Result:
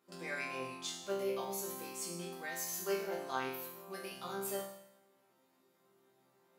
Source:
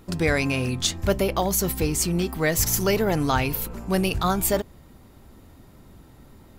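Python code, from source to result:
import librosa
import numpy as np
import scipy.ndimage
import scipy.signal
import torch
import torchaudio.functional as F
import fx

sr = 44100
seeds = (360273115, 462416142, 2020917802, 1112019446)

y = scipy.signal.sosfilt(scipy.signal.butter(2, 350.0, 'highpass', fs=sr, output='sos'), x)
y = fx.resonator_bank(y, sr, root=48, chord='sus4', decay_s=0.79)
y = F.gain(torch.from_numpy(y), 3.5).numpy()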